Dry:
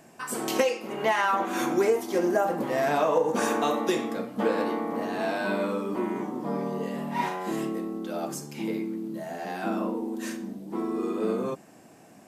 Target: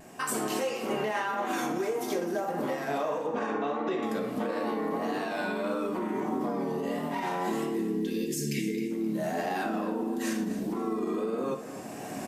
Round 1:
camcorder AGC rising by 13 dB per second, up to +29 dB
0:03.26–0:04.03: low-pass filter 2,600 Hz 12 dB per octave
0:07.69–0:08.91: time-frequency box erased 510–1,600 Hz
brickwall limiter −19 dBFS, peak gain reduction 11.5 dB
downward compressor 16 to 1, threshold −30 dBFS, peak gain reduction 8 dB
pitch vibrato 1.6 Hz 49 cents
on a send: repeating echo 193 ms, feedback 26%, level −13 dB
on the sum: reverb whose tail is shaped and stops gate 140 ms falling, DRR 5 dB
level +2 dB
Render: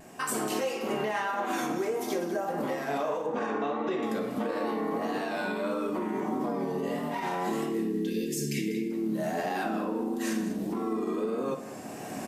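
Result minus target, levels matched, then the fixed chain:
echo 69 ms early
camcorder AGC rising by 13 dB per second, up to +29 dB
0:03.26–0:04.03: low-pass filter 2,600 Hz 12 dB per octave
0:07.69–0:08.91: time-frequency box erased 510–1,600 Hz
brickwall limiter −19 dBFS, peak gain reduction 11.5 dB
downward compressor 16 to 1, threshold −30 dBFS, peak gain reduction 8 dB
pitch vibrato 1.6 Hz 49 cents
on a send: repeating echo 262 ms, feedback 26%, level −13 dB
on the sum: reverb whose tail is shaped and stops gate 140 ms falling, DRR 5 dB
level +2 dB

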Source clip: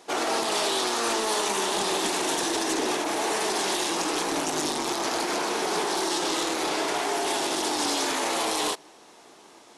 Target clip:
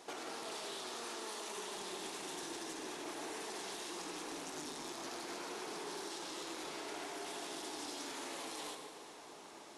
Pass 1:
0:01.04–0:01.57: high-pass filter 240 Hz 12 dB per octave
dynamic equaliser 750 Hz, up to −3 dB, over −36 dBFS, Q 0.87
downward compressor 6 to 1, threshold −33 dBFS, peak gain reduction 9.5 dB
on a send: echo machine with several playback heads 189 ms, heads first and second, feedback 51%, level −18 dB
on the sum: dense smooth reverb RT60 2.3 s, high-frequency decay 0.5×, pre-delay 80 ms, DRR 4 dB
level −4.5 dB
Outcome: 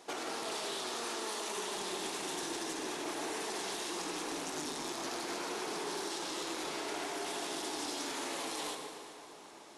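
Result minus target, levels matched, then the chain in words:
downward compressor: peak gain reduction −6 dB
0:01.04–0:01.57: high-pass filter 240 Hz 12 dB per octave
dynamic equaliser 750 Hz, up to −3 dB, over −36 dBFS, Q 0.87
downward compressor 6 to 1, threshold −40 dBFS, peak gain reduction 15 dB
on a send: echo machine with several playback heads 189 ms, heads first and second, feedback 51%, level −18 dB
on the sum: dense smooth reverb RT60 2.3 s, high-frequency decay 0.5×, pre-delay 80 ms, DRR 4 dB
level −4.5 dB

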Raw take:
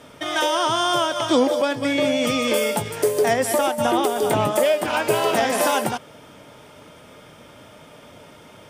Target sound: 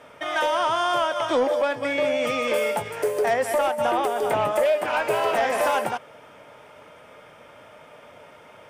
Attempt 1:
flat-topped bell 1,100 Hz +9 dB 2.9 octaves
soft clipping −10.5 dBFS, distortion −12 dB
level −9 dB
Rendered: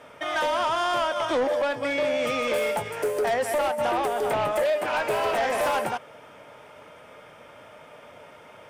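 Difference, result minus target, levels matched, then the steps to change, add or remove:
soft clipping: distortion +8 dB
change: soft clipping −4 dBFS, distortion −20 dB

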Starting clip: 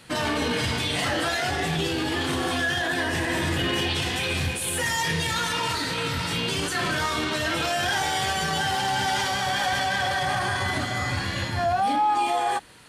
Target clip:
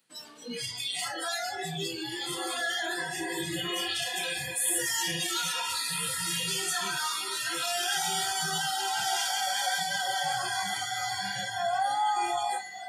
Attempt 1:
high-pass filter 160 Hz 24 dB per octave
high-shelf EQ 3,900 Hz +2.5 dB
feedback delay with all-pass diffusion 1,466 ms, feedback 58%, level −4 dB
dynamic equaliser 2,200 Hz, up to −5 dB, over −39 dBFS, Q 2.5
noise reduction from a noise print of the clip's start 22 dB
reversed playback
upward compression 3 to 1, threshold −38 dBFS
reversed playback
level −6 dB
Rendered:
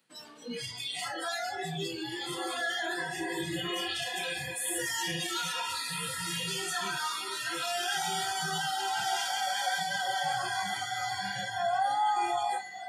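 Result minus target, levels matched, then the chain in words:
8,000 Hz band −3.5 dB
high-pass filter 160 Hz 24 dB per octave
high-shelf EQ 3,900 Hz +9.5 dB
feedback delay with all-pass diffusion 1,466 ms, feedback 58%, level −4 dB
dynamic equaliser 2,200 Hz, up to −5 dB, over −39 dBFS, Q 2.5
noise reduction from a noise print of the clip's start 22 dB
reversed playback
upward compression 3 to 1, threshold −38 dBFS
reversed playback
level −6 dB

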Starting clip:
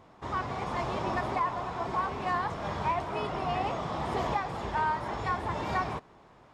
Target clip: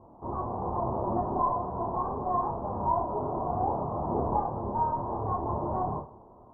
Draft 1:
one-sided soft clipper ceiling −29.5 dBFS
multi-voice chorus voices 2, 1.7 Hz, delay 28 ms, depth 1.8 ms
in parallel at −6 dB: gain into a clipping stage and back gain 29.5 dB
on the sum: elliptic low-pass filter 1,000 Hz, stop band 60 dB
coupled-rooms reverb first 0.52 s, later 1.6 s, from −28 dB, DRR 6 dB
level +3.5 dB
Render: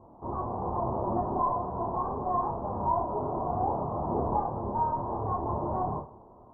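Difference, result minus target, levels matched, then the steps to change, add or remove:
gain into a clipping stage and back: distortion +27 dB
change: gain into a clipping stage and back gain 22 dB

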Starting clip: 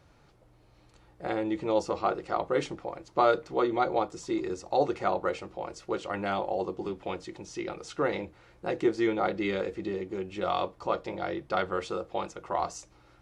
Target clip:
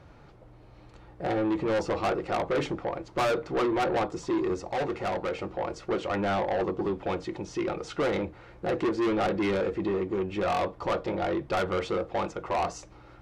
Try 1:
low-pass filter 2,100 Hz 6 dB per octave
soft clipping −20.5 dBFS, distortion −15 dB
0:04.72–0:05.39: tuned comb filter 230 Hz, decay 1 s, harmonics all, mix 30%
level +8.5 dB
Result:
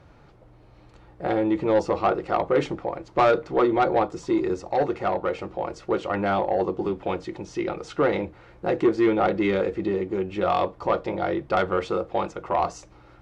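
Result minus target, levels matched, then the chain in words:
soft clipping: distortion −9 dB
low-pass filter 2,100 Hz 6 dB per octave
soft clipping −31.5 dBFS, distortion −6 dB
0:04.72–0:05.39: tuned comb filter 230 Hz, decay 1 s, harmonics all, mix 30%
level +8.5 dB

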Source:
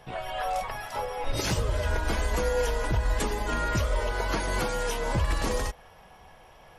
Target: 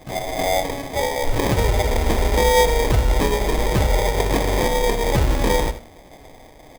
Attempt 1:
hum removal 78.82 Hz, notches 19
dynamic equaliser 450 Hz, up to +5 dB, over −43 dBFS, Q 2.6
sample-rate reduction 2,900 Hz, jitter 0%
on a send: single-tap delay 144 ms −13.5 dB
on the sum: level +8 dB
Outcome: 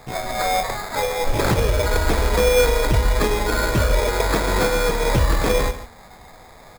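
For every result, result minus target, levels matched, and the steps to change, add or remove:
echo 63 ms late; sample-rate reduction: distortion −5 dB
change: single-tap delay 81 ms −13.5 dB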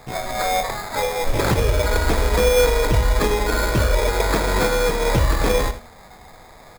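sample-rate reduction: distortion −5 dB
change: sample-rate reduction 1,400 Hz, jitter 0%

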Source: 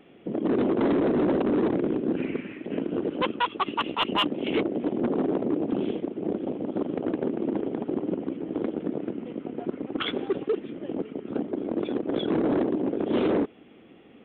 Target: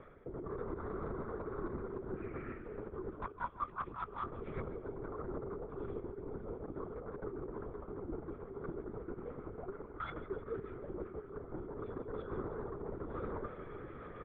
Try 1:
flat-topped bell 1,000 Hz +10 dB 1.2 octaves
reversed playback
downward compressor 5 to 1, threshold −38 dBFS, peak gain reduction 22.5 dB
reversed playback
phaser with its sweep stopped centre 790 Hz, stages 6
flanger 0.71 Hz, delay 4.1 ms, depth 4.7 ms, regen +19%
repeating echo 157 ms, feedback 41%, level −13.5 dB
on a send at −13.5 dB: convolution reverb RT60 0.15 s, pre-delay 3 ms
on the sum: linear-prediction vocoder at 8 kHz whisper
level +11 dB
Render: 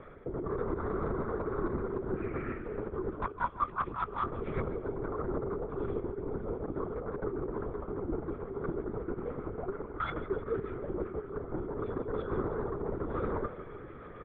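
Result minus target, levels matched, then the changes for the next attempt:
downward compressor: peak gain reduction −7.5 dB
change: downward compressor 5 to 1, threshold −47.5 dBFS, peak gain reduction 30.5 dB

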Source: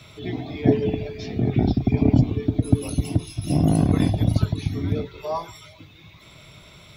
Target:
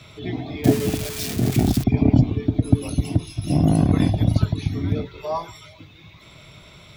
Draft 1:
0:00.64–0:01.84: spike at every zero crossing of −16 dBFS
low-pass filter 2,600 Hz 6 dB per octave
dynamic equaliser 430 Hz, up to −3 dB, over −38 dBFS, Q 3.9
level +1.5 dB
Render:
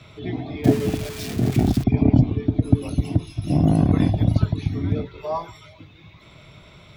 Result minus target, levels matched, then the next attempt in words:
8,000 Hz band −7.0 dB
0:00.64–0:01.84: spike at every zero crossing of −16 dBFS
low-pass filter 8,500 Hz 6 dB per octave
dynamic equaliser 430 Hz, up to −3 dB, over −38 dBFS, Q 3.9
level +1.5 dB

